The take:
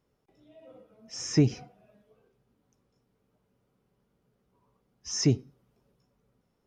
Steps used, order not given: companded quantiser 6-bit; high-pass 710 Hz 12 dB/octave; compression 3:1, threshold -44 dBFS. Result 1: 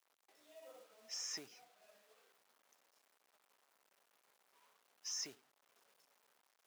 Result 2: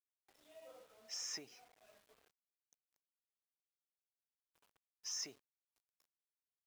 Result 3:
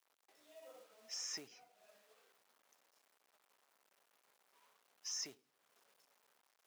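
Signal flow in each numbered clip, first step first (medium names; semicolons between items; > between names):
compression > companded quantiser > high-pass; compression > high-pass > companded quantiser; companded quantiser > compression > high-pass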